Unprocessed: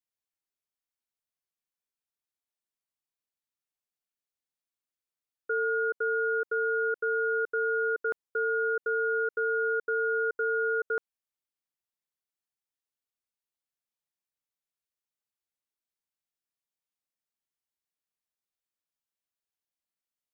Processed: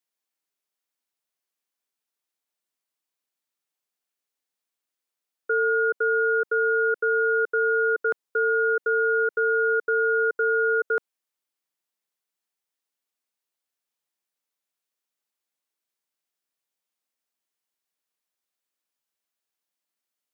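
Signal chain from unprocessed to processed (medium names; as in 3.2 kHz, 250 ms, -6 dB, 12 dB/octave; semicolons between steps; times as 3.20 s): high-pass 220 Hz; trim +6 dB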